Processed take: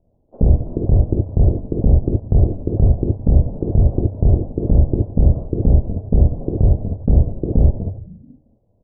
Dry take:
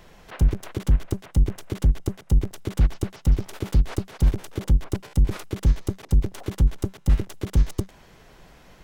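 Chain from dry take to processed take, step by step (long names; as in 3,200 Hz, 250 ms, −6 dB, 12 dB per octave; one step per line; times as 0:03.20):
sub-harmonics by changed cycles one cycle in 2, muted
noise gate −41 dBFS, range −21 dB
in parallel at −0.5 dB: downward compressor, threshold −26 dBFS, peak gain reduction 12 dB
on the sum: Butterworth low-pass 680 Hz 36 dB per octave
on a send: echo with shifted repeats 163 ms, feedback 54%, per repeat −77 Hz, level −19 dB
on the sum: reverb whose tail is shaped and stops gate 90 ms rising, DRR −1.5 dB
level +3.5 dB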